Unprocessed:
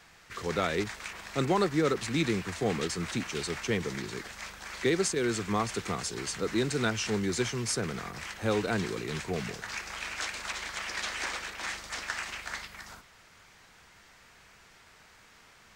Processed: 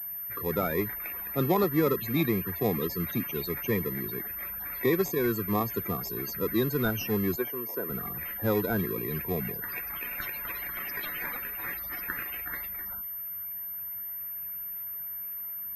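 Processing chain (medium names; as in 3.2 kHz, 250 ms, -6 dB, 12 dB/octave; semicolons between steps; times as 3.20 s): loudest bins only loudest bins 32; in parallel at -9 dB: sample-and-hold 30×; 7.36–7.90 s: on the sum: three-band isolator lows -23 dB, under 280 Hz, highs -14 dB, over 2.1 kHz; class-D stage that switches slowly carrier 13 kHz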